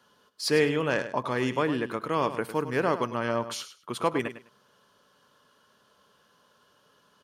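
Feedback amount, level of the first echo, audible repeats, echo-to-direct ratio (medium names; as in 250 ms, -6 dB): 18%, -12.0 dB, 2, -12.0 dB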